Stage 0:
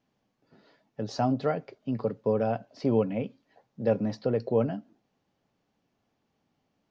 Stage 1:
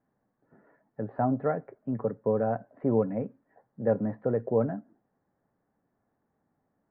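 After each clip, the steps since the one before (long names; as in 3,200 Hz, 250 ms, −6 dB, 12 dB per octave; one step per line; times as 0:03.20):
elliptic low-pass filter 1,800 Hz, stop band 70 dB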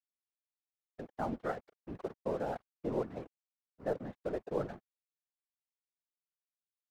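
spectral tilt +2.5 dB per octave
dead-zone distortion −45 dBFS
random phases in short frames
level −5.5 dB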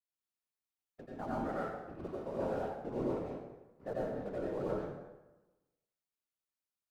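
dense smooth reverb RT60 1.1 s, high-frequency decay 0.7×, pre-delay 75 ms, DRR −6 dB
level −7 dB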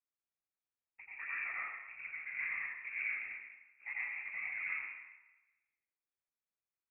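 voice inversion scrambler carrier 2,600 Hz
level −3.5 dB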